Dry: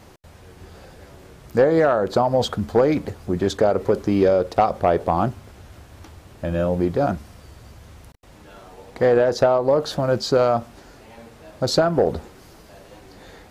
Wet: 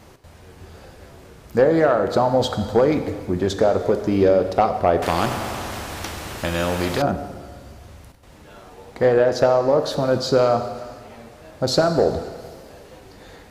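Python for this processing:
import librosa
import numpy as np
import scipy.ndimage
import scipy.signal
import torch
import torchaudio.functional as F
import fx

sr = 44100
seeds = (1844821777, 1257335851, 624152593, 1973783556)

y = fx.rev_plate(x, sr, seeds[0], rt60_s=1.7, hf_ratio=1.0, predelay_ms=0, drr_db=7.5)
y = fx.spectral_comp(y, sr, ratio=2.0, at=(5.02, 7.02))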